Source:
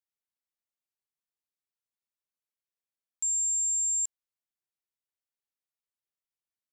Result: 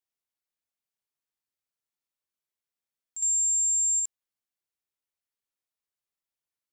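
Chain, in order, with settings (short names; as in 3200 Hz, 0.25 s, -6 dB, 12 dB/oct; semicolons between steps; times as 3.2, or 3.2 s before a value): reverse echo 60 ms -7 dB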